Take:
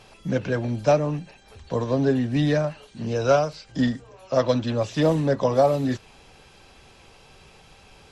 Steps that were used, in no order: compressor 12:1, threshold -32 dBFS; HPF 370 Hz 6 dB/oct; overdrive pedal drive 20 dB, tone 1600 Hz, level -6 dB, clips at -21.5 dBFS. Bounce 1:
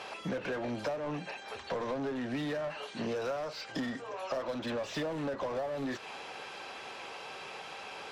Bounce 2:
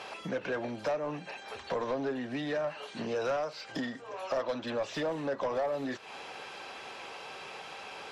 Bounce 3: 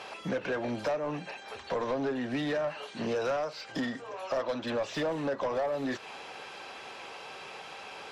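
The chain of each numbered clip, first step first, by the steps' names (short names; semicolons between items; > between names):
HPF > overdrive pedal > compressor; compressor > HPF > overdrive pedal; HPF > compressor > overdrive pedal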